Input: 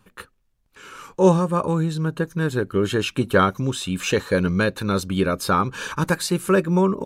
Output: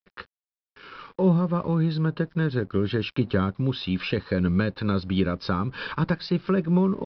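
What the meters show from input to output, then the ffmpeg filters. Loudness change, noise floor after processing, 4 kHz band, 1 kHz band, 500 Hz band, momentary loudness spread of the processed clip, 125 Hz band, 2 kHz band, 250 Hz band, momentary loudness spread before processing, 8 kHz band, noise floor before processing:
-3.5 dB, under -85 dBFS, -5.0 dB, -9.0 dB, -6.5 dB, 6 LU, -0.5 dB, -7.0 dB, -1.5 dB, 7 LU, under -30 dB, -65 dBFS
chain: -filter_complex "[0:a]acrossover=split=270[a][b];[b]acompressor=threshold=-27dB:ratio=5[c];[a][c]amix=inputs=2:normalize=0,aresample=11025,aeval=exprs='sgn(val(0))*max(abs(val(0))-0.00266,0)':c=same,aresample=44100"

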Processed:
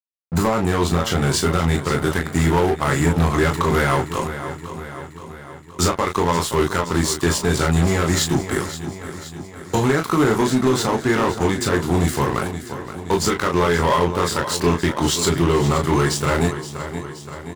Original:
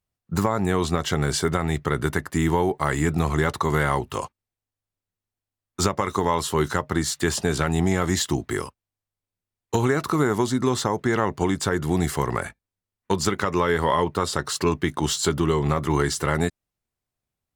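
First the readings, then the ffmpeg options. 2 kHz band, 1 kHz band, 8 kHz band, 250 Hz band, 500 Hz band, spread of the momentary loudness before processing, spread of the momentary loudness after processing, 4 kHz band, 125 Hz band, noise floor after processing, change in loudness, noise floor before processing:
+4.5 dB, +4.0 dB, +4.5 dB, +4.0 dB, +4.0 dB, 5 LU, 13 LU, +5.0 dB, +4.5 dB, -38 dBFS, +4.0 dB, under -85 dBFS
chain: -filter_complex "[0:a]asplit=2[a][b];[b]aecho=0:1:23|36:0.501|0.447[c];[a][c]amix=inputs=2:normalize=0,aeval=exprs='sgn(val(0))*max(abs(val(0))-0.0188,0)':c=same,asplit=2[d][e];[e]aecho=0:1:523|1046|1569|2092|2615|3138:0.224|0.132|0.0779|0.046|0.0271|0.016[f];[d][f]amix=inputs=2:normalize=0,asoftclip=type=hard:threshold=-16dB,volume=5dB"

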